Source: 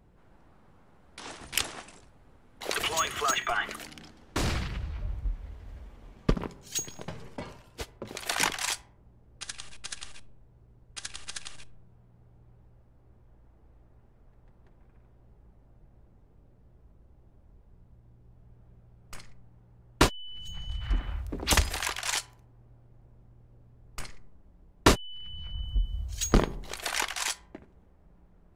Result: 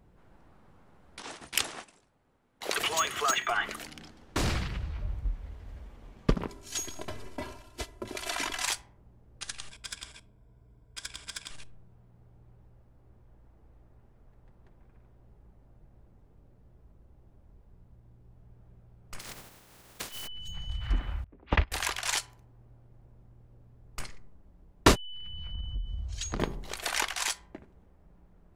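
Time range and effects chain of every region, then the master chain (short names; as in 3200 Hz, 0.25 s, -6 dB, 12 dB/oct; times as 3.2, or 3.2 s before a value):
1.22–3.56 gate -48 dBFS, range -9 dB + low shelf 92 Hz -11.5 dB
6.48–8.64 CVSD 64 kbps + comb 3 ms, depth 82% + compressor 4:1, threshold -29 dBFS
9.7–11.51 ripple EQ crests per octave 1.7, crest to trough 9 dB + tube stage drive 22 dB, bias 0.5
19.19–20.26 spectral contrast lowered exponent 0.31 + compressor 20:1, threshold -34 dBFS
21.24–21.72 LPF 2800 Hz 24 dB/oct + gate -27 dBFS, range -20 dB
25.05–26.4 LPF 6600 Hz + compressor, threshold -30 dBFS + overloaded stage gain 21 dB
whole clip: dry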